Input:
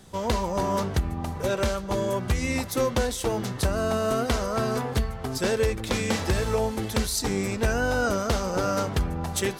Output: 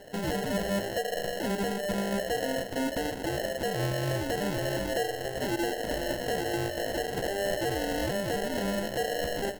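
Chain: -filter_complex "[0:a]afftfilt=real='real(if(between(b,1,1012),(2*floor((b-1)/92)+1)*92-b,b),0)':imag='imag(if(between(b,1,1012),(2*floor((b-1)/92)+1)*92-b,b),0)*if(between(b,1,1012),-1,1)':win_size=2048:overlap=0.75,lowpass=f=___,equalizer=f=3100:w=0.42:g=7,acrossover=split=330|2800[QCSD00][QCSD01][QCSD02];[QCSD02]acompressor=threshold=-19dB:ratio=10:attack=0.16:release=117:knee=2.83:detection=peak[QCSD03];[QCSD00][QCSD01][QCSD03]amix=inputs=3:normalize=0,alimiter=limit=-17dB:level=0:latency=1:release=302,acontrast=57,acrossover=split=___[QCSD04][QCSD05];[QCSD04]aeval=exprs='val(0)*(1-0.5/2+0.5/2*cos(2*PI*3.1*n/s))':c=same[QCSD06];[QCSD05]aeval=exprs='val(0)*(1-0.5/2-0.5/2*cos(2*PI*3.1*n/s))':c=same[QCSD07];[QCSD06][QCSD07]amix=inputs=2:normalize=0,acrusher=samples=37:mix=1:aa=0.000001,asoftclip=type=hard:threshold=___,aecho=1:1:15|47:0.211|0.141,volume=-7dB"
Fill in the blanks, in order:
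4400, 1700, -18.5dB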